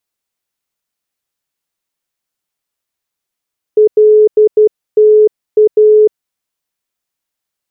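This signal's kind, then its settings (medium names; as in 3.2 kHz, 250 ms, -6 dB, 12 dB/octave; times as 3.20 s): Morse "LTA" 12 wpm 427 Hz -3 dBFS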